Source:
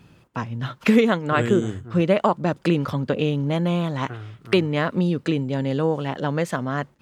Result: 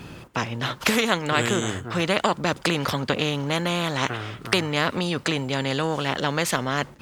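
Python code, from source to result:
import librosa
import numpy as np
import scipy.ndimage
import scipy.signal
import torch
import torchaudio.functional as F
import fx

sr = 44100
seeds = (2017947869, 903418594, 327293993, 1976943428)

y = fx.spectral_comp(x, sr, ratio=2.0)
y = y * librosa.db_to_amplitude(4.5)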